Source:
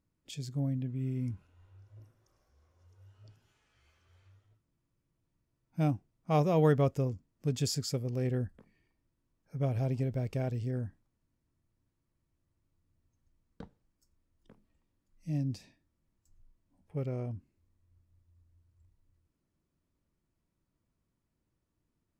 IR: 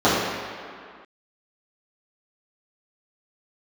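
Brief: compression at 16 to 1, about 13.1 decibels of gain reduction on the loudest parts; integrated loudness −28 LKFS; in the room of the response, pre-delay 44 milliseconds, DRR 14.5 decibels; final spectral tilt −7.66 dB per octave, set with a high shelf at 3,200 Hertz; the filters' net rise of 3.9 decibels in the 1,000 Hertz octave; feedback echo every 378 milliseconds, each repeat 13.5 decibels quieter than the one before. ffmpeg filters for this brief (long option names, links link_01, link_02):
-filter_complex "[0:a]equalizer=frequency=1000:width_type=o:gain=6,highshelf=frequency=3200:gain=-4,acompressor=threshold=-33dB:ratio=16,aecho=1:1:378|756:0.211|0.0444,asplit=2[link_01][link_02];[1:a]atrim=start_sample=2205,adelay=44[link_03];[link_02][link_03]afir=irnorm=-1:irlink=0,volume=-39dB[link_04];[link_01][link_04]amix=inputs=2:normalize=0,volume=12dB"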